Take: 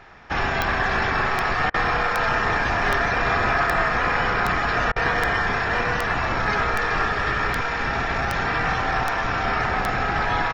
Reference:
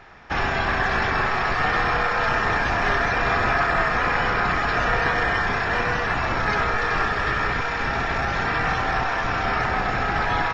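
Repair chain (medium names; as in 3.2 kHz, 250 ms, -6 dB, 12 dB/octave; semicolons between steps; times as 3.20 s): de-click; interpolate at 1.70/4.92 s, 40 ms; inverse comb 236 ms -17 dB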